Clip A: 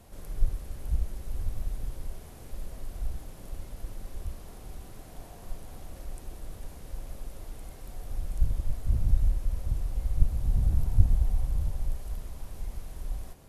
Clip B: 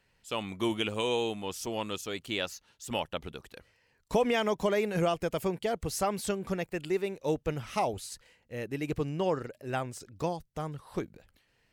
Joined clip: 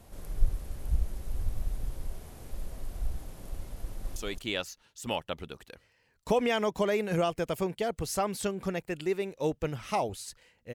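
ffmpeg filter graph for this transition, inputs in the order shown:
ffmpeg -i cue0.wav -i cue1.wav -filter_complex "[0:a]apad=whole_dur=10.74,atrim=end=10.74,atrim=end=4.162[link_01];[1:a]atrim=start=1.998:end=8.58[link_02];[link_01][link_02]acrossfade=duration=0.004:curve1=hsin:curve2=hsin,asplit=2[link_03][link_04];[link_04]afade=type=in:start_time=3.82:duration=0.01,afade=type=out:start_time=4.16:duration=0.01,aecho=0:1:220|440|660:0.630957|0.0946436|0.0141965[link_05];[link_03][link_05]amix=inputs=2:normalize=0" out.wav

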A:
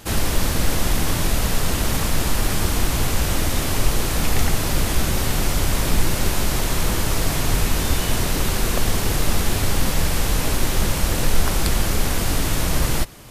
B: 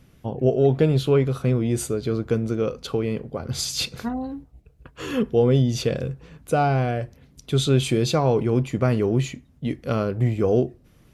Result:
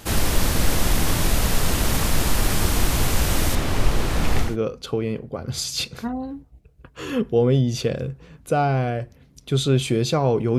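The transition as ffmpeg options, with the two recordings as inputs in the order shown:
ffmpeg -i cue0.wav -i cue1.wav -filter_complex "[0:a]asettb=1/sr,asplit=3[link_01][link_02][link_03];[link_01]atrim=end=3.554[link_04];[link_02]atrim=start=3.55:end=4.57,asetpts=PTS-STARTPTS,afade=type=in:duration=0.004:curve=qsin,afade=type=out:start_time=1.016:duration=0.004:curve=qsin,lowpass=frequency=3000:poles=1[link_05];[link_03]atrim=start=4.566[link_06];[link_04][link_05]acrossfade=duration=0.004:curve1=hsin:curve2=qsin[link_07];[link_07][link_06]acrossfade=duration=0.004:curve1=qsin:curve2=hsin,apad=whole_dur=10.58,atrim=end=10.58,atrim=end=4.57,asetpts=PTS-STARTPTS[link_08];[1:a]atrim=start=2.38:end=8.59,asetpts=PTS-STARTPTS[link_09];[link_08][link_09]acrossfade=duration=0.2:curve1=tri:curve2=tri" out.wav

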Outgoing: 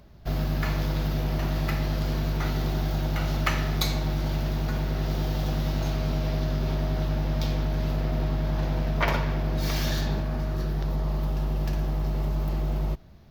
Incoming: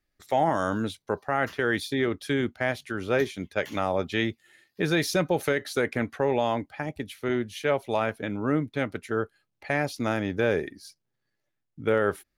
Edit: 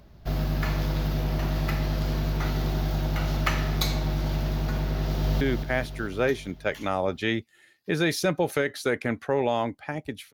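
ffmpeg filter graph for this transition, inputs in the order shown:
ffmpeg -i cue0.wav -i cue1.wav -filter_complex "[0:a]apad=whole_dur=10.33,atrim=end=10.33,atrim=end=5.412[link_01];[1:a]atrim=start=2.318:end=7.24[link_02];[link_01][link_02]acrossfade=duration=0.004:curve1=hsin:curve2=hsin,asplit=2[link_03][link_04];[link_04]afade=type=in:start_time=5.01:duration=0.01,afade=type=out:start_time=5.41:duration=0.01,aecho=0:1:220|440|660|880|1100|1320|1540|1760|1980:0.473151|0.307548|0.199906|0.129939|0.0844605|0.0548993|0.0356845|0.023195|0.0150767[link_05];[link_03][link_05]amix=inputs=2:normalize=0" out.wav

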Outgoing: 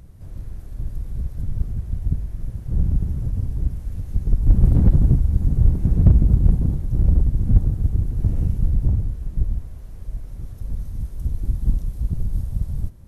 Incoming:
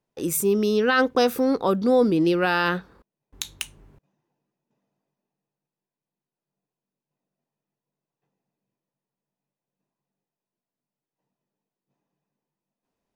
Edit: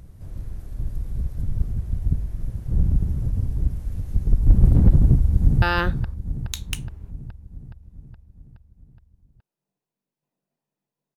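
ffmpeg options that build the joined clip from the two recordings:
ffmpeg -i cue0.wav -i cue1.wav -filter_complex "[0:a]apad=whole_dur=11.16,atrim=end=11.16,atrim=end=5.622[link_01];[1:a]atrim=start=2.498:end=8.04[link_02];[link_01][link_02]acrossfade=duration=0.004:curve1=hsin:curve2=hsin,asplit=2[link_03][link_04];[link_04]afade=type=in:start_time=4.99:duration=0.01,afade=type=out:start_time=5.62:duration=0.01,aecho=0:1:420|840|1260|1680|2100|2520|2940|3360|3780:0.354813|0.230629|0.149909|0.0974406|0.0633364|0.0411687|0.0267596|0.0173938|0.0113059[link_05];[link_03][link_05]amix=inputs=2:normalize=0" out.wav

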